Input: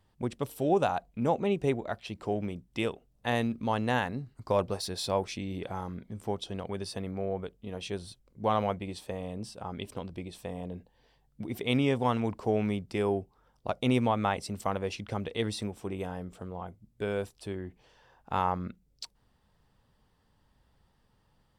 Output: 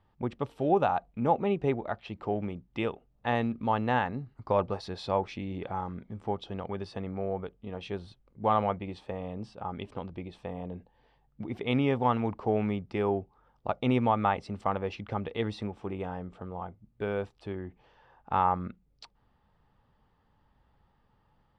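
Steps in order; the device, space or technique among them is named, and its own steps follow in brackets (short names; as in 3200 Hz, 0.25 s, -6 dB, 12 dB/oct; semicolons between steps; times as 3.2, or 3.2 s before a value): inside a cardboard box (LPF 2900 Hz 12 dB/oct; small resonant body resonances 850/1200 Hz, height 6 dB, ringing for 25 ms)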